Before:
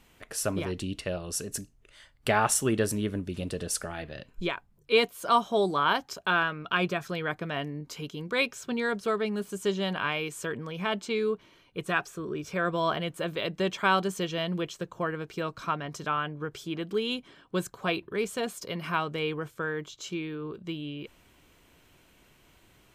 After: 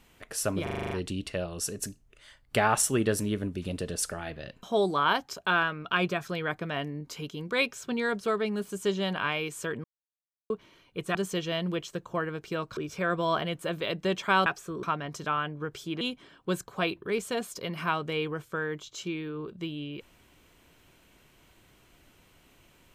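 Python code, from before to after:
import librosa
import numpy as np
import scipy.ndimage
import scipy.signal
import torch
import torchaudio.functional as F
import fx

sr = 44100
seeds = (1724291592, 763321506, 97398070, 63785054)

y = fx.edit(x, sr, fx.stutter(start_s=0.63, slice_s=0.04, count=8),
    fx.cut(start_s=4.35, length_s=1.08),
    fx.silence(start_s=10.64, length_s=0.66),
    fx.swap(start_s=11.95, length_s=0.37, other_s=14.01, other_length_s=1.62),
    fx.cut(start_s=16.81, length_s=0.26), tone=tone)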